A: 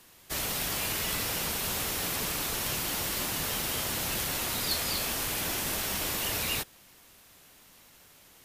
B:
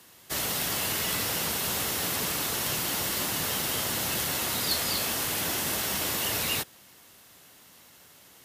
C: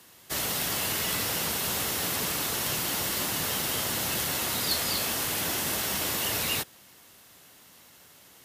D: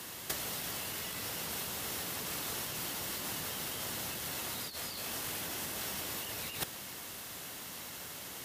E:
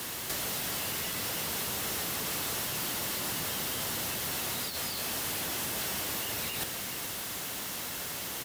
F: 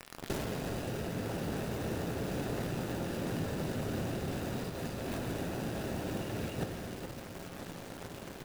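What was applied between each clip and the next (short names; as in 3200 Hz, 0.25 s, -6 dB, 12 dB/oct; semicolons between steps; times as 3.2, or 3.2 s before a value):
HPF 82 Hz 12 dB/oct; notch 2400 Hz, Q 21; gain +2.5 dB
nothing audible
negative-ratio compressor -36 dBFS, ratio -0.5
bit-crush 8-bit; soft clip -37.5 dBFS, distortion -12 dB; echo 0.422 s -11 dB; gain +8 dB
median filter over 41 samples; reverb RT60 2.3 s, pre-delay 6 ms, DRR 6 dB; gain +4 dB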